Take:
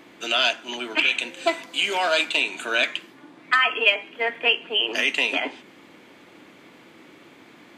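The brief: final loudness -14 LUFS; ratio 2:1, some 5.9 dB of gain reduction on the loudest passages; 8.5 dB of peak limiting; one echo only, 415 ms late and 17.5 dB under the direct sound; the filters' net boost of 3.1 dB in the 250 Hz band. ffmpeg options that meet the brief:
-af "equalizer=f=250:t=o:g=4,acompressor=threshold=0.0562:ratio=2,alimiter=limit=0.112:level=0:latency=1,aecho=1:1:415:0.133,volume=5.96"

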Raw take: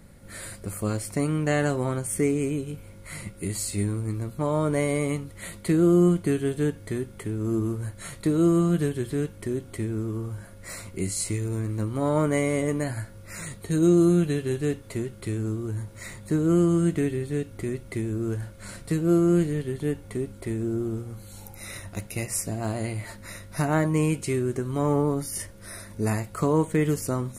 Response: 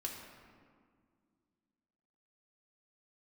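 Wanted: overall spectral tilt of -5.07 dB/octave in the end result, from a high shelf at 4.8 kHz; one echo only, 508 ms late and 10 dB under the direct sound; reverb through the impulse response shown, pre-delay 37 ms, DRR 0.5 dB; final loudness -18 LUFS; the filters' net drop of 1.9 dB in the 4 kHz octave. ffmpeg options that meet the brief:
-filter_complex "[0:a]equalizer=f=4000:t=o:g=-7,highshelf=f=4800:g=8.5,aecho=1:1:508:0.316,asplit=2[s0][s1];[1:a]atrim=start_sample=2205,adelay=37[s2];[s1][s2]afir=irnorm=-1:irlink=0,volume=1[s3];[s0][s3]amix=inputs=2:normalize=0,volume=1.78"

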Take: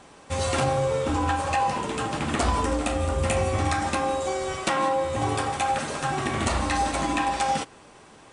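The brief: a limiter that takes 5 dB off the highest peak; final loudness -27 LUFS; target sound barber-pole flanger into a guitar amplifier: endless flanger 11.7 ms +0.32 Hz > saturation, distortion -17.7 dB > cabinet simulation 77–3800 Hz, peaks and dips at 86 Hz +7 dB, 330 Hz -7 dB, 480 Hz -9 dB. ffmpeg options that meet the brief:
-filter_complex "[0:a]alimiter=limit=0.119:level=0:latency=1,asplit=2[s0][s1];[s1]adelay=11.7,afreqshift=0.32[s2];[s0][s2]amix=inputs=2:normalize=1,asoftclip=threshold=0.0596,highpass=77,equalizer=f=86:t=q:w=4:g=7,equalizer=f=330:t=q:w=4:g=-7,equalizer=f=480:t=q:w=4:g=-9,lowpass=f=3800:w=0.5412,lowpass=f=3800:w=1.3066,volume=2.11"

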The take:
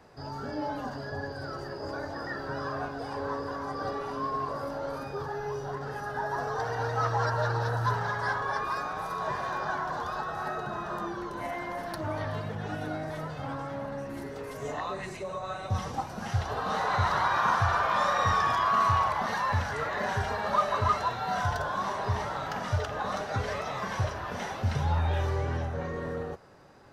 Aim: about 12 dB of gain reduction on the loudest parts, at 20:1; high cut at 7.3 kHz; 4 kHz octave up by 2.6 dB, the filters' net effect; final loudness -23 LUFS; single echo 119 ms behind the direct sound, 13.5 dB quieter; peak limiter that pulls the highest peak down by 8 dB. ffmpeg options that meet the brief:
-af "lowpass=7300,equalizer=f=4000:t=o:g=3.5,acompressor=threshold=0.0251:ratio=20,alimiter=level_in=2.24:limit=0.0631:level=0:latency=1,volume=0.447,aecho=1:1:119:0.211,volume=6.68"

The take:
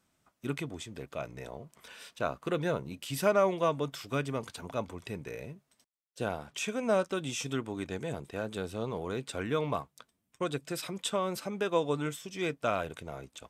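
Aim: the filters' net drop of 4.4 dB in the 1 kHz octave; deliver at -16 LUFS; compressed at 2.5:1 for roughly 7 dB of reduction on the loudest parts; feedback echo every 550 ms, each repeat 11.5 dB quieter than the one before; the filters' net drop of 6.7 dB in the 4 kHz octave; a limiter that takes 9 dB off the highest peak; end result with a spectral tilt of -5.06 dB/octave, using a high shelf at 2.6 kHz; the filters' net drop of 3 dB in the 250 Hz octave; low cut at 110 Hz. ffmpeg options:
-af "highpass=110,equalizer=f=250:t=o:g=-3.5,equalizer=f=1000:t=o:g=-4.5,highshelf=f=2600:g=-5,equalizer=f=4000:t=o:g=-4,acompressor=threshold=0.02:ratio=2.5,alimiter=level_in=2.24:limit=0.0631:level=0:latency=1,volume=0.447,aecho=1:1:550|1100|1650:0.266|0.0718|0.0194,volume=22.4"

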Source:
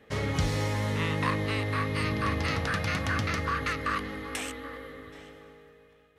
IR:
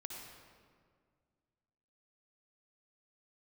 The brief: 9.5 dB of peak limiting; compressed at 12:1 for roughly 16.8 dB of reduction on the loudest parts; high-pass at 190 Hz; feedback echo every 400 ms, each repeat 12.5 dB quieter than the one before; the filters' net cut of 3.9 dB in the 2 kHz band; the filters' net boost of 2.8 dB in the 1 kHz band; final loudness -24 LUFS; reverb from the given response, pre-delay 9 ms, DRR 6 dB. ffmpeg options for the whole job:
-filter_complex "[0:a]highpass=190,equalizer=f=1000:t=o:g=5.5,equalizer=f=2000:t=o:g=-6.5,acompressor=threshold=0.00891:ratio=12,alimiter=level_in=5.31:limit=0.0631:level=0:latency=1,volume=0.188,aecho=1:1:400|800|1200:0.237|0.0569|0.0137,asplit=2[s0][s1];[1:a]atrim=start_sample=2205,adelay=9[s2];[s1][s2]afir=irnorm=-1:irlink=0,volume=0.668[s3];[s0][s3]amix=inputs=2:normalize=0,volume=14.1"

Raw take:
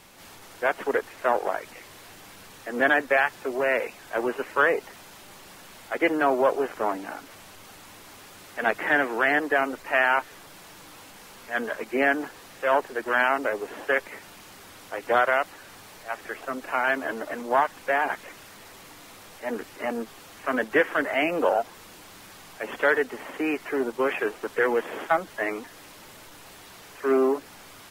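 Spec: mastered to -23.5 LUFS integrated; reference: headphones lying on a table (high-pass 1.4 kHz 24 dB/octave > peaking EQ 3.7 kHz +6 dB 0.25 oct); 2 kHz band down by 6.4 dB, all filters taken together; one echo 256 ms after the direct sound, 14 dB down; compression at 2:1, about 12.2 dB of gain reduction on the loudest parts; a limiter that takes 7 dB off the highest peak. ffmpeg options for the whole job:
-af "equalizer=f=2000:t=o:g=-7,acompressor=threshold=0.00891:ratio=2,alimiter=level_in=1.58:limit=0.0631:level=0:latency=1,volume=0.631,highpass=f=1400:w=0.5412,highpass=f=1400:w=1.3066,equalizer=f=3700:t=o:w=0.25:g=6,aecho=1:1:256:0.2,volume=15.8"

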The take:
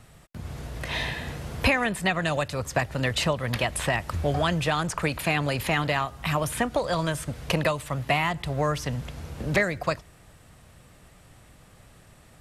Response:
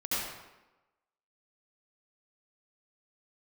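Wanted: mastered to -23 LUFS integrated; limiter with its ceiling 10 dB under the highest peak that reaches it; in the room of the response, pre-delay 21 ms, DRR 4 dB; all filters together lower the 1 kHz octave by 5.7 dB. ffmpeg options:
-filter_complex "[0:a]equalizer=f=1000:t=o:g=-8,alimiter=limit=0.1:level=0:latency=1,asplit=2[s0][s1];[1:a]atrim=start_sample=2205,adelay=21[s2];[s1][s2]afir=irnorm=-1:irlink=0,volume=0.266[s3];[s0][s3]amix=inputs=2:normalize=0,volume=2.24"

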